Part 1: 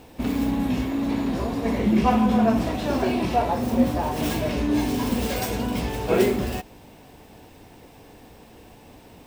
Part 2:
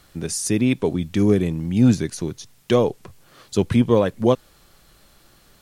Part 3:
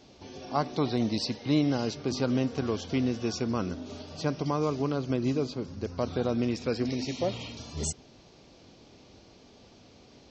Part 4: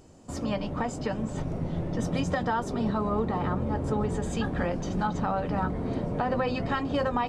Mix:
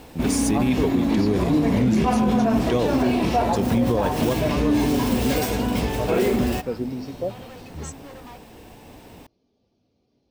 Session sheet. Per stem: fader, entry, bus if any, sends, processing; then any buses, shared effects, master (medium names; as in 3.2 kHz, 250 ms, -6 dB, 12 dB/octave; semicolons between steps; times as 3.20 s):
+3.0 dB, 0.00 s, no send, none
-1.5 dB, 0.00 s, no send, none
+2.0 dB, 0.00 s, no send, spectral contrast expander 1.5:1
-7.5 dB, 1.10 s, no send, saturation -33.5 dBFS, distortion -7 dB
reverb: none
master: peak limiter -11.5 dBFS, peak gain reduction 8.5 dB